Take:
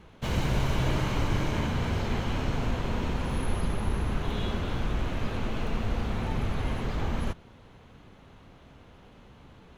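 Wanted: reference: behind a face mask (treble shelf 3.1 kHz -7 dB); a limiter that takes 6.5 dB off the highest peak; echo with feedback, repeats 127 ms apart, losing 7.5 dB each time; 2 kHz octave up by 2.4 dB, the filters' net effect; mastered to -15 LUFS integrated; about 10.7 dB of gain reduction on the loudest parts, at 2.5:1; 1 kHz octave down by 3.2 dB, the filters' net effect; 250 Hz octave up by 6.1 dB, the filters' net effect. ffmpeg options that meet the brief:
-af "equalizer=f=250:t=o:g=8,equalizer=f=1000:t=o:g=-5.5,equalizer=f=2000:t=o:g=7,acompressor=threshold=0.0141:ratio=2.5,alimiter=level_in=1.78:limit=0.0631:level=0:latency=1,volume=0.562,highshelf=f=3100:g=-7,aecho=1:1:127|254|381|508|635:0.422|0.177|0.0744|0.0312|0.0131,volume=15.8"

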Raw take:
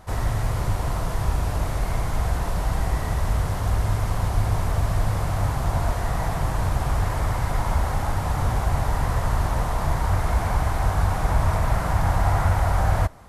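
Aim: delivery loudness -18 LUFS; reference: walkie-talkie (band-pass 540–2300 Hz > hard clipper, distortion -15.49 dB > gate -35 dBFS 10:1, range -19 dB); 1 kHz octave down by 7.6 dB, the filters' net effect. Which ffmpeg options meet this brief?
-af "highpass=540,lowpass=2300,equalizer=f=1000:t=o:g=-9,asoftclip=type=hard:threshold=0.0251,agate=range=0.112:threshold=0.0178:ratio=10,volume=11.2"

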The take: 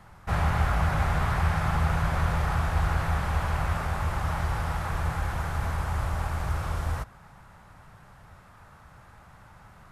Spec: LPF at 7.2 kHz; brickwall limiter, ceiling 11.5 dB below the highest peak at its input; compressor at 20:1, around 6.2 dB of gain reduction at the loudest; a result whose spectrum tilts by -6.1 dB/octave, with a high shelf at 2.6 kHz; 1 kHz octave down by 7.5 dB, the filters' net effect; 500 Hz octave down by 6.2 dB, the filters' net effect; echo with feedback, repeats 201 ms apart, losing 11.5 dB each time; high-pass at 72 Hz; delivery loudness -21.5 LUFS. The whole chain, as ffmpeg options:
-af "highpass=72,lowpass=7200,equalizer=f=500:t=o:g=-5,equalizer=f=1000:t=o:g=-7.5,highshelf=f=2600:g=-5.5,acompressor=threshold=0.0355:ratio=20,alimiter=level_in=2.99:limit=0.0631:level=0:latency=1,volume=0.335,aecho=1:1:201|402|603:0.266|0.0718|0.0194,volume=9.44"

